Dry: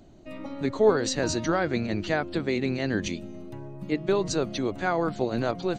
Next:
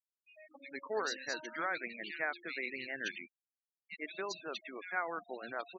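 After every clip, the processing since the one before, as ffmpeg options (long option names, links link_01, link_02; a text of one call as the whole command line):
ffmpeg -i in.wav -filter_complex "[0:a]bandpass=frequency=2200:width_type=q:width=1.5:csg=0,acrossover=split=2400[link_01][link_02];[link_01]adelay=100[link_03];[link_03][link_02]amix=inputs=2:normalize=0,afftfilt=real='re*gte(hypot(re,im),0.01)':imag='im*gte(hypot(re,im),0.01)':win_size=1024:overlap=0.75" out.wav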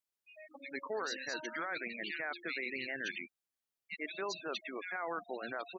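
ffmpeg -i in.wav -af "alimiter=level_in=8.5dB:limit=-24dB:level=0:latency=1:release=11,volume=-8.5dB,volume=3.5dB" out.wav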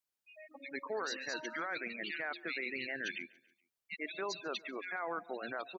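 ffmpeg -i in.wav -af "aecho=1:1:141|282|423:0.0668|0.0321|0.0154" out.wav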